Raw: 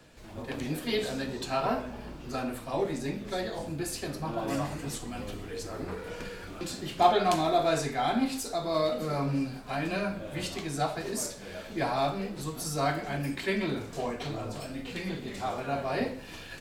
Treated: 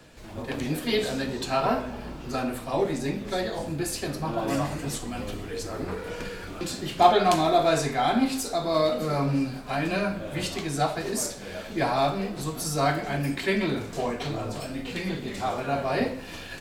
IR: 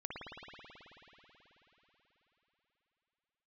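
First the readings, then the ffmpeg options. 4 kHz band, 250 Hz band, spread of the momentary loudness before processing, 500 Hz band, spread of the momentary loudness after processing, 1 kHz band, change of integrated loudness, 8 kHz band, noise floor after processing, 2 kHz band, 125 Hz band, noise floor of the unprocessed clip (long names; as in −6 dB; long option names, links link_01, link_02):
+4.5 dB, +4.5 dB, 12 LU, +4.5 dB, 12 LU, +4.5 dB, +4.5 dB, +4.5 dB, −40 dBFS, +4.5 dB, +4.5 dB, −44 dBFS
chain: -filter_complex "[0:a]asplit=2[link_01][link_02];[1:a]atrim=start_sample=2205,asetrate=57330,aresample=44100[link_03];[link_02][link_03]afir=irnorm=-1:irlink=0,volume=-18.5dB[link_04];[link_01][link_04]amix=inputs=2:normalize=0,volume=4dB"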